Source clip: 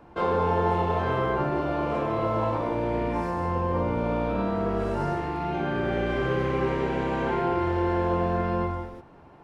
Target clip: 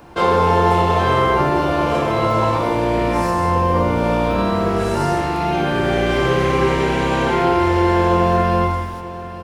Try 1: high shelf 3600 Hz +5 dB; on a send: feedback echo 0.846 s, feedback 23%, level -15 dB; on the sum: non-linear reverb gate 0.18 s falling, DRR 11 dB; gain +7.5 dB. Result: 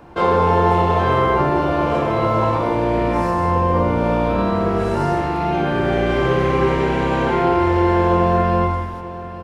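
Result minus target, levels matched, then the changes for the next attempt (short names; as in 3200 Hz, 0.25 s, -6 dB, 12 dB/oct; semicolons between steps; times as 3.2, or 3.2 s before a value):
8000 Hz band -8.0 dB
change: high shelf 3600 Hz +16 dB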